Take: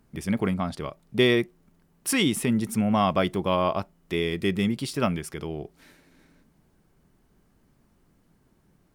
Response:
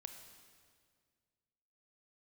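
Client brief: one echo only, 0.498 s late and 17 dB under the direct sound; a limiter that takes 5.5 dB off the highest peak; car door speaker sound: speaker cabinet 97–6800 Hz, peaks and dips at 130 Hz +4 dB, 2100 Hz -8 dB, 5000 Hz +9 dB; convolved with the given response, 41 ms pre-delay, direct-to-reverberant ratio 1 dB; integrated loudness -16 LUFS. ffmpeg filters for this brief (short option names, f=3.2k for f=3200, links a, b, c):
-filter_complex "[0:a]alimiter=limit=-14.5dB:level=0:latency=1,aecho=1:1:498:0.141,asplit=2[a][b];[1:a]atrim=start_sample=2205,adelay=41[c];[b][c]afir=irnorm=-1:irlink=0,volume=4dB[d];[a][d]amix=inputs=2:normalize=0,highpass=97,equalizer=f=130:t=q:w=4:g=4,equalizer=f=2.1k:t=q:w=4:g=-8,equalizer=f=5k:t=q:w=4:g=9,lowpass=f=6.8k:w=0.5412,lowpass=f=6.8k:w=1.3066,volume=9dB"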